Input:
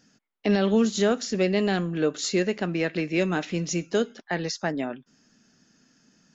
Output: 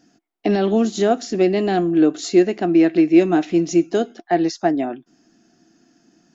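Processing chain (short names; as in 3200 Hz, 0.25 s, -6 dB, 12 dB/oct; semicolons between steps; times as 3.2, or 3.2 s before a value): small resonant body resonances 330/700 Hz, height 17 dB, ringing for 60 ms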